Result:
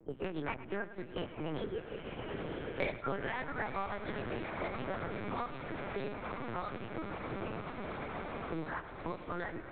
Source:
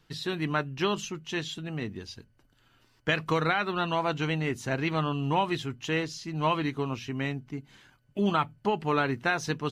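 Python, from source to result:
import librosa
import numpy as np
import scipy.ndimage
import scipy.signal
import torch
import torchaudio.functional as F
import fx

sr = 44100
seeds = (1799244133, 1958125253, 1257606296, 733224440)

p1 = fx.partial_stretch(x, sr, pct=121)
p2 = fx.doppler_pass(p1, sr, speed_mps=41, closest_m=11.0, pass_at_s=2.37)
p3 = fx.pitch_keep_formants(p2, sr, semitones=-3.5)
p4 = scipy.signal.sosfilt(scipy.signal.butter(2, 130.0, 'highpass', fs=sr, output='sos'), p3)
p5 = fx.env_lowpass(p4, sr, base_hz=410.0, full_db=-47.5)
p6 = scipy.signal.sosfilt(scipy.signal.butter(2, 2200.0, 'lowpass', fs=sr, output='sos'), p5)
p7 = fx.echo_diffused(p6, sr, ms=931, feedback_pct=64, wet_db=-13.0)
p8 = fx.lpc_vocoder(p7, sr, seeds[0], excitation='pitch_kept', order=8)
p9 = fx.low_shelf(p8, sr, hz=170.0, db=-10.5)
p10 = p9 + fx.echo_feedback(p9, sr, ms=105, feedback_pct=41, wet_db=-16.0, dry=0)
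p11 = fx.band_squash(p10, sr, depth_pct=100)
y = p11 * 10.0 ** (14.5 / 20.0)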